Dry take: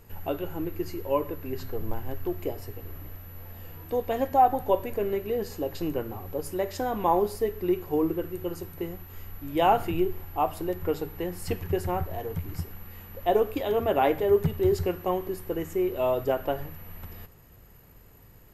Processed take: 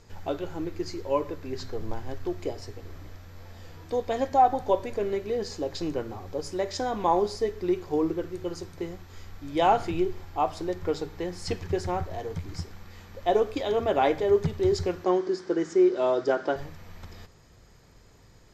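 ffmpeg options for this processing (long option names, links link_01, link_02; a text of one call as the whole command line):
ffmpeg -i in.wav -filter_complex "[0:a]asettb=1/sr,asplit=3[link_01][link_02][link_03];[link_01]atrim=end=15.044[link_04];[link_02]atrim=start=15.04:end=16.56,asetpts=PTS-STARTPTS,afade=type=in:duration=0.004:curve=qsin,afade=type=out:start_time=1.516:duration=0.004:curve=qsin,highpass=frequency=150:width=0.5412,highpass=frequency=150:width=1.3066,equalizer=frequency=350:width_type=q:width=4:gain=8,equalizer=frequency=1500:width_type=q:width=4:gain=8,equalizer=frequency=2600:width_type=q:width=4:gain=-4,equalizer=frequency=5000:width_type=q:width=4:gain=5,lowpass=frequency=7700:width=0.5412,lowpass=frequency=7700:width=1.3066[link_05];[link_03]atrim=start=16.556[link_06];[link_04][link_05]acrossfade=duration=0.004:curve1=hsin:curve2=qsin[link_07];[link_07][link_06]acrossfade=duration=0.004:curve1=qsin:curve2=hsin,lowpass=frequency=5800:width=0.5412,lowpass=frequency=5800:width=1.3066,bass=frequency=250:gain=-2,treble=frequency=4000:gain=13,bandreject=frequency=2800:width=9.2" out.wav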